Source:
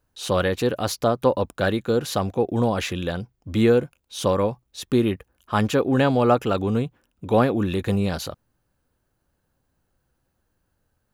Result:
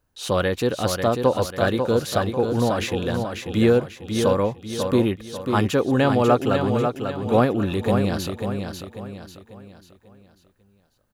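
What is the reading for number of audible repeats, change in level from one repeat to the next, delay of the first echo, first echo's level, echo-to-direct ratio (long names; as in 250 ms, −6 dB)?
4, −8.0 dB, 543 ms, −6.0 dB, −5.0 dB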